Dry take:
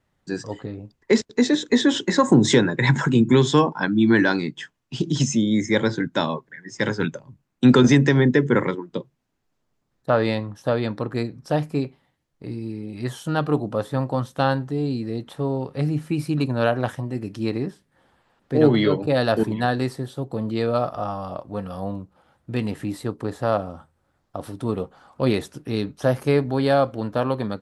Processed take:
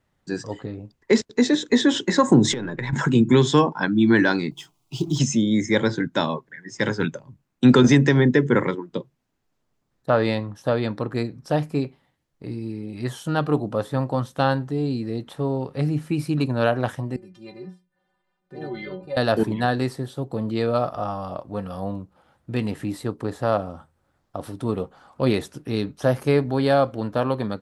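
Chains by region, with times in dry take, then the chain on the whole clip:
0:02.52–0:02.93: gain on one half-wave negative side −3 dB + high-shelf EQ 5,300 Hz −9.5 dB + downward compressor 10 to 1, threshold −24 dBFS
0:04.51–0:05.19: mu-law and A-law mismatch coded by mu + phaser with its sweep stopped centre 340 Hz, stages 8
0:17.16–0:19.17: high-shelf EQ 5,800 Hz −6 dB + stiff-string resonator 180 Hz, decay 0.26 s, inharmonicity 0.008
whole clip: no processing

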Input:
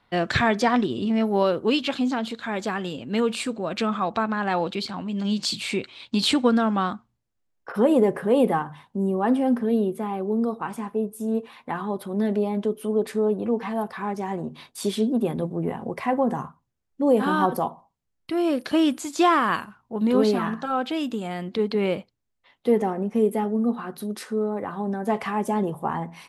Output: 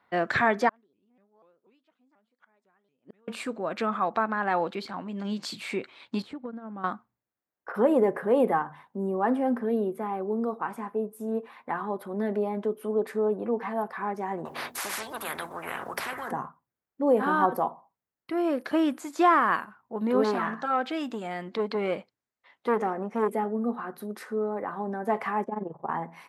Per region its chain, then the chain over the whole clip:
0:00.69–0:03.28: gate with flip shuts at −25 dBFS, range −39 dB + pitch modulation by a square or saw wave saw up 4.1 Hz, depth 250 cents
0:06.22–0:06.84: noise gate −19 dBFS, range −14 dB + spectral tilt −3.5 dB per octave + downward compressor 12 to 1, threshold −29 dBFS
0:14.45–0:16.31: mains-hum notches 60/120/180/240/300 Hz + every bin compressed towards the loudest bin 10 to 1
0:20.24–0:23.35: low-pass filter 7,500 Hz + high-shelf EQ 2,800 Hz +9 dB + saturating transformer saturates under 750 Hz
0:25.44–0:25.89: amplitude modulation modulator 22 Hz, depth 70% + head-to-tape spacing loss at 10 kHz 39 dB
whole clip: high-pass filter 420 Hz 6 dB per octave; flat-topped bell 5,300 Hz −10.5 dB 2.3 octaves

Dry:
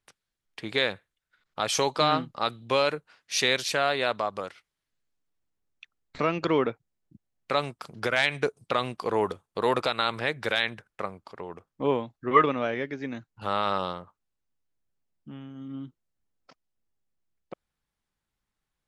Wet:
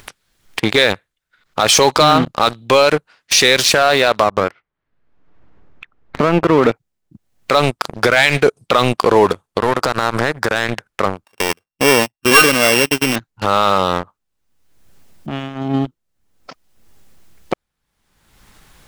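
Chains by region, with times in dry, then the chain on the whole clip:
0:04.23–0:06.64: low-pass filter 1,600 Hz + downward compressor 3 to 1, threshold −29 dBFS
0:09.58–0:10.69: flat-topped bell 2,900 Hz −12.5 dB 1.1 octaves + downward compressor 10 to 1, threshold −31 dBFS
0:11.25–0:13.16: samples sorted by size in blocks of 16 samples + noise gate −40 dBFS, range −17 dB + tilt shelving filter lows −3.5 dB, about 640 Hz
whole clip: leveller curve on the samples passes 3; upward compression, threshold −35 dBFS; boost into a limiter +13 dB; level −1 dB

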